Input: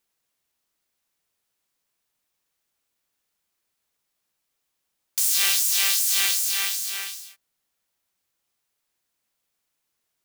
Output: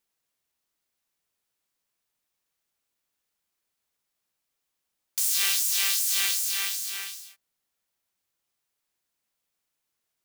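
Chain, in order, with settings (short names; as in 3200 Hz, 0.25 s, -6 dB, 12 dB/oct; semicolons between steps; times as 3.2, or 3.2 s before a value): 5.23–7.25 bell 650 Hz -14.5 dB 0.23 oct; gain -3.5 dB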